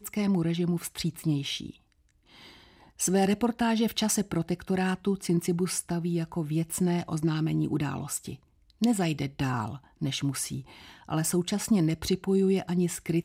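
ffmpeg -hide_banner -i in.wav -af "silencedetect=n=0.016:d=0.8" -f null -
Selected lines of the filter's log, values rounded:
silence_start: 1.70
silence_end: 3.00 | silence_duration: 1.29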